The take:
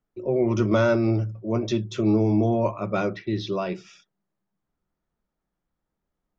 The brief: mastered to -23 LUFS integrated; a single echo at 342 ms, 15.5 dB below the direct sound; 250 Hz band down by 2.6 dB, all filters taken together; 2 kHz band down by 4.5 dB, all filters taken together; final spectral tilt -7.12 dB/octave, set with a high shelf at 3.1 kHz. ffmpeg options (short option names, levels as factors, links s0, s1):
-af "equalizer=f=250:t=o:g=-3.5,equalizer=f=2000:t=o:g=-5,highshelf=f=3100:g=-6.5,aecho=1:1:342:0.168,volume=1.33"